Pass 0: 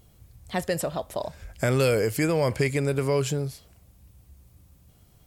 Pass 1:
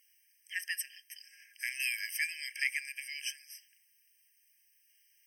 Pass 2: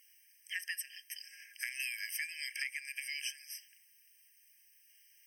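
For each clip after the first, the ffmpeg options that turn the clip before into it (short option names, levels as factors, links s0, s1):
-af "afftfilt=real='re*eq(mod(floor(b*sr/1024/1600),2),1)':imag='im*eq(mod(floor(b*sr/1024/1600),2),1)':win_size=1024:overlap=0.75"
-af "acompressor=threshold=0.01:ratio=6,volume=1.58"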